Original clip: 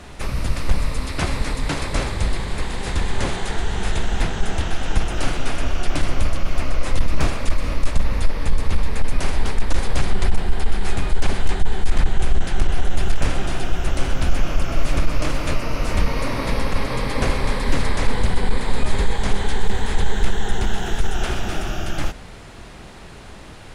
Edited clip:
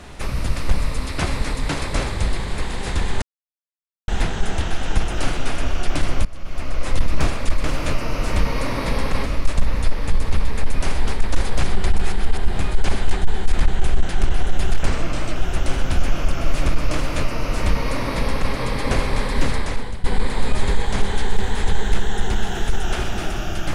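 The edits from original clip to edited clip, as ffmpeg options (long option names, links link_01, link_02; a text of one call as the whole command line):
ffmpeg -i in.wav -filter_complex "[0:a]asplit=11[link_01][link_02][link_03][link_04][link_05][link_06][link_07][link_08][link_09][link_10][link_11];[link_01]atrim=end=3.22,asetpts=PTS-STARTPTS,afade=type=out:start_time=3.216:duration=0.004:curve=hsin[link_12];[link_02]atrim=start=3.22:end=4.08,asetpts=PTS-STARTPTS,volume=0[link_13];[link_03]atrim=start=4.08:end=6.25,asetpts=PTS-STARTPTS,afade=type=in:duration=0.004:curve=hsin,afade=type=out:start_time=2.166:duration=0.004:curve=hsin:silence=0.0944061[link_14];[link_04]atrim=start=6.25:end=7.642,asetpts=PTS-STARTPTS,afade=type=in:duration=0.68:silence=0.0944061[link_15];[link_05]atrim=start=15.248:end=16.872[link_16];[link_06]atrim=start=7.638:end=10.402[link_17];[link_07]atrim=start=10.398:end=10.952,asetpts=PTS-STARTPTS,areverse[link_18];[link_08]atrim=start=10.948:end=13.244[link_19];[link_09]atrim=start=13.24:end=13.67,asetpts=PTS-STARTPTS,asetrate=37926,aresample=44100[link_20];[link_10]atrim=start=13.666:end=18.35,asetpts=PTS-STARTPTS,afade=type=out:start_time=4.114:duration=0.57:silence=0.141254[link_21];[link_11]atrim=start=18.35,asetpts=PTS-STARTPTS,afade=type=in:duration=0.004:curve=hsin:silence=0.141254[link_22];[link_12][link_13][link_14][link_15]concat=n=4:v=0:a=1[link_23];[link_23][link_16]acrossfade=duration=0.004:curve1=hsin:curve2=hsin[link_24];[link_24][link_17]acrossfade=duration=0.004:curve1=hsin:curve2=hsin[link_25];[link_25][link_18]acrossfade=duration=0.004:curve1=hsin:curve2=hsin[link_26];[link_26][link_19]acrossfade=duration=0.004:curve1=hsin:curve2=hsin[link_27];[link_27][link_20]acrossfade=duration=0.004:curve1=hsin:curve2=hsin[link_28];[link_21][link_22]concat=n=2:v=0:a=1[link_29];[link_28][link_29]acrossfade=duration=0.004:curve1=hsin:curve2=hsin" out.wav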